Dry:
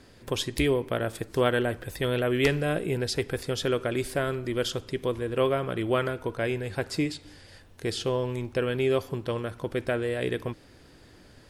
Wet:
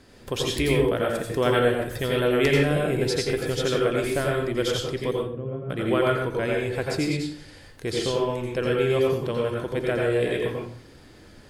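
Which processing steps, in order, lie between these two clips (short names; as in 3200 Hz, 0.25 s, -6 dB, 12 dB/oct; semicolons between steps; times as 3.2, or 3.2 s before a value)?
5.11–5.7 band-pass 150 Hz, Q 1.7; reverb RT60 0.50 s, pre-delay 81 ms, DRR -2 dB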